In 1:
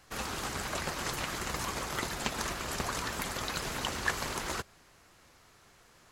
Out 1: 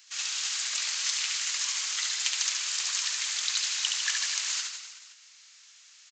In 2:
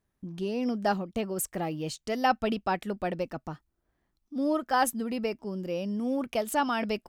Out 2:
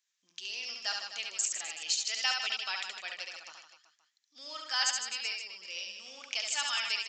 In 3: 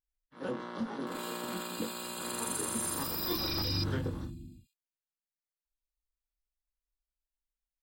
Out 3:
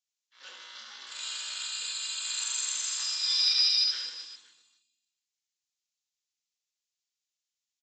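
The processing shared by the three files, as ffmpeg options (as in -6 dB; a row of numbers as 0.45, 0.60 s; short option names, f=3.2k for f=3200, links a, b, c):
-filter_complex "[0:a]asuperpass=centerf=5200:order=4:qfactor=0.66,asplit=2[a][b];[b]aecho=0:1:70|154|254.8|375.8|520.9:0.631|0.398|0.251|0.158|0.1[c];[a][c]amix=inputs=2:normalize=0,aresample=16000,aresample=44100,crystalizer=i=2:c=0,volume=4dB"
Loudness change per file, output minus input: +7.0, -3.0, +7.5 LU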